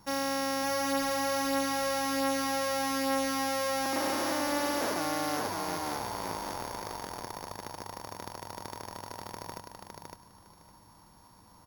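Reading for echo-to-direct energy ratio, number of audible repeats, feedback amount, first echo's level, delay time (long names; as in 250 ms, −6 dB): −4.0 dB, 2, 16%, −4.0 dB, 559 ms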